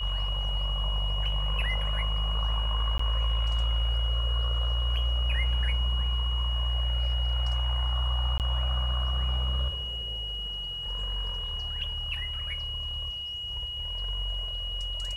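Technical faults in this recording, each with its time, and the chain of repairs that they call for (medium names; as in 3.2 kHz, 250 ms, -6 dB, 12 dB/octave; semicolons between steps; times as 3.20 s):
whine 2.9 kHz -33 dBFS
2.98–2.99 s: dropout 14 ms
8.38–8.40 s: dropout 18 ms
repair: band-stop 2.9 kHz, Q 30; interpolate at 2.98 s, 14 ms; interpolate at 8.38 s, 18 ms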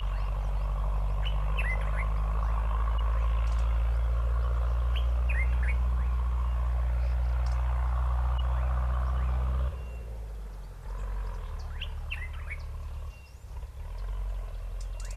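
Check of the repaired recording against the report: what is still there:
nothing left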